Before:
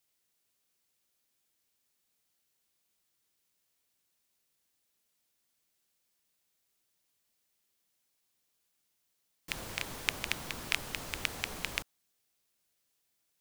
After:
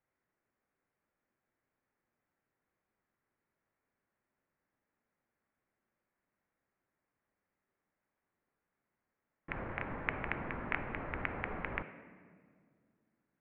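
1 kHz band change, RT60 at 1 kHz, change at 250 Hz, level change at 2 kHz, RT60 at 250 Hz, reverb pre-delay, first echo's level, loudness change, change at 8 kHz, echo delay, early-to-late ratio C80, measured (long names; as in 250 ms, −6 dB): +3.5 dB, 1.8 s, +4.5 dB, −2.0 dB, 2.6 s, 4 ms, no echo audible, −3.5 dB, below −35 dB, no echo audible, 13.0 dB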